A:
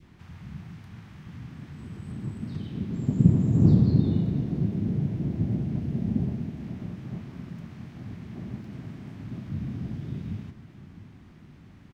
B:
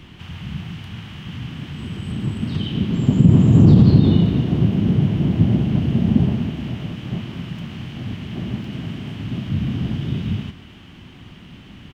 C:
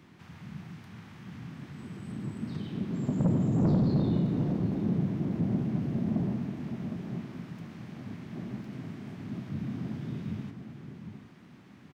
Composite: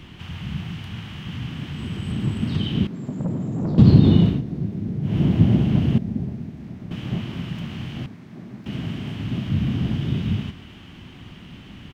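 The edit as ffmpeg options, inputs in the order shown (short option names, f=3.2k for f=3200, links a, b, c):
-filter_complex "[2:a]asplit=2[a][b];[0:a]asplit=2[c][d];[1:a]asplit=5[e][f][g][h][i];[e]atrim=end=2.872[j];[a]atrim=start=2.868:end=3.782[k];[f]atrim=start=3.778:end=4.42[l];[c]atrim=start=4.26:end=5.18[m];[g]atrim=start=5.02:end=5.982[n];[d]atrim=start=5.978:end=6.912[o];[h]atrim=start=6.908:end=8.062[p];[b]atrim=start=8.058:end=8.662[q];[i]atrim=start=8.658[r];[j][k]acrossfade=d=0.004:c1=hsin:c2=hsin[s];[s][l]acrossfade=d=0.004:c1=hsin:c2=hsin[t];[t][m]acrossfade=d=0.16:c1=tri:c2=tri[u];[u][n]acrossfade=d=0.16:c1=tri:c2=tri[v];[v][o]acrossfade=d=0.004:c1=hsin:c2=hsin[w];[w][p]acrossfade=d=0.004:c1=hsin:c2=hsin[x];[x][q]acrossfade=d=0.004:c1=hsin:c2=hsin[y];[y][r]acrossfade=d=0.004:c1=hsin:c2=hsin"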